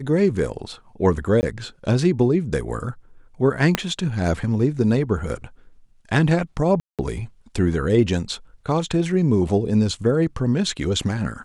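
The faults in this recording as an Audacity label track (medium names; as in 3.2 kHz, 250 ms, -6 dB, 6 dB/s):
1.410000	1.430000	dropout 19 ms
3.750000	3.750000	pop -3 dBFS
6.800000	6.990000	dropout 187 ms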